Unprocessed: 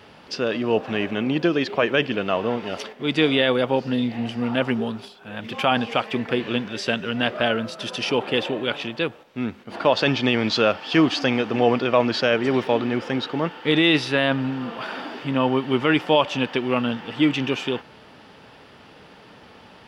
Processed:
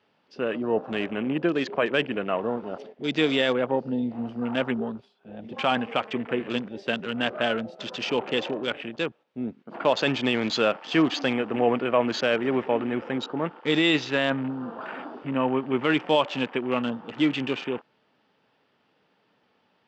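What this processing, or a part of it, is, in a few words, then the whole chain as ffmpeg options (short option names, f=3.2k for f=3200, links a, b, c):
over-cleaned archive recording: -af "highpass=140,lowpass=5.8k,afwtdn=0.0224,volume=-3.5dB"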